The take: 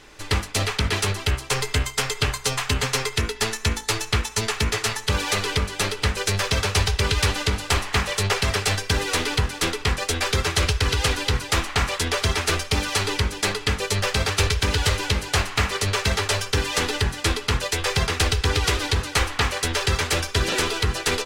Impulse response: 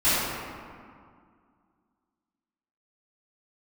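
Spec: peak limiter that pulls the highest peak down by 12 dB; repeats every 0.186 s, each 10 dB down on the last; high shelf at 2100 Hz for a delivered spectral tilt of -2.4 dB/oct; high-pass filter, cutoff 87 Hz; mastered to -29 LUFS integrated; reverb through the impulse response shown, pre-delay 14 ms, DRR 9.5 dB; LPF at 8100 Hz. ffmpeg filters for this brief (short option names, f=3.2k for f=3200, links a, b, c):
-filter_complex "[0:a]highpass=87,lowpass=8.1k,highshelf=f=2.1k:g=6,alimiter=limit=-16.5dB:level=0:latency=1,aecho=1:1:186|372|558|744:0.316|0.101|0.0324|0.0104,asplit=2[a][b];[1:a]atrim=start_sample=2205,adelay=14[c];[b][c]afir=irnorm=-1:irlink=0,volume=-27dB[d];[a][d]amix=inputs=2:normalize=0,volume=-4dB"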